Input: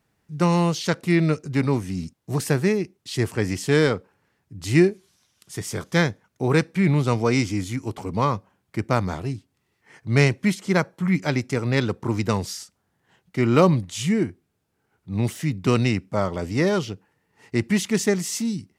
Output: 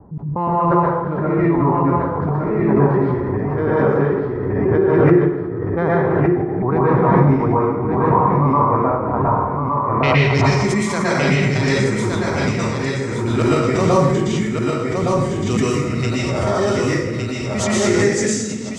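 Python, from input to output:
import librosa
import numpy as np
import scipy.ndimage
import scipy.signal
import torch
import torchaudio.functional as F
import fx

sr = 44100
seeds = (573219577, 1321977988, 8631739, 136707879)

p1 = fx.block_reorder(x, sr, ms=179.0, group=2)
p2 = fx.noise_reduce_blind(p1, sr, reduce_db=8)
p3 = fx.env_lowpass(p2, sr, base_hz=540.0, full_db=-17.0)
p4 = fx.mod_noise(p3, sr, seeds[0], snr_db=34)
p5 = fx.filter_sweep_lowpass(p4, sr, from_hz=1000.0, to_hz=7500.0, start_s=9.3, end_s=10.6, q=2.9)
p6 = p5 + fx.echo_feedback(p5, sr, ms=1164, feedback_pct=26, wet_db=-4.0, dry=0)
p7 = fx.rev_plate(p6, sr, seeds[1], rt60_s=1.1, hf_ratio=0.65, predelay_ms=105, drr_db=-9.0)
p8 = fx.pre_swell(p7, sr, db_per_s=23.0)
y = p8 * librosa.db_to_amplitude(-6.0)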